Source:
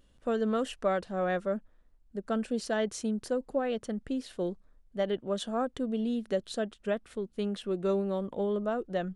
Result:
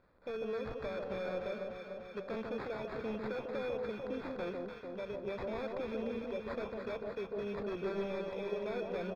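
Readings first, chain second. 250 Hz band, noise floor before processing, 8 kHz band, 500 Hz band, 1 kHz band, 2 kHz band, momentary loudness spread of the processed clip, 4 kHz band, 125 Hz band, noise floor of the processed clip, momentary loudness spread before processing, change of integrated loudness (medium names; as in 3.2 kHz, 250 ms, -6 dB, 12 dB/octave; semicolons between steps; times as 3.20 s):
-10.0 dB, -63 dBFS, under -20 dB, -6.0 dB, -8.5 dB, -4.5 dB, 4 LU, -9.0 dB, -8.0 dB, -49 dBFS, 6 LU, -7.5 dB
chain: tracing distortion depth 0.034 ms; high-pass 340 Hz 6 dB/octave; treble shelf 9.2 kHz +11.5 dB; comb 2 ms, depth 46%; peak limiter -31 dBFS, peak gain reduction 13.5 dB; tremolo 0.89 Hz, depth 39%; sample-and-hold 15×; wavefolder -35.5 dBFS; distance through air 280 m; echo whose repeats swap between lows and highs 148 ms, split 1.1 kHz, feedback 82%, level -3 dB; trim +2 dB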